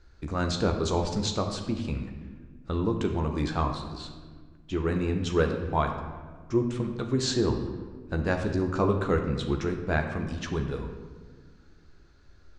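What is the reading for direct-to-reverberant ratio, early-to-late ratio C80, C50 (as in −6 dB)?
3.0 dB, 8.0 dB, 6.5 dB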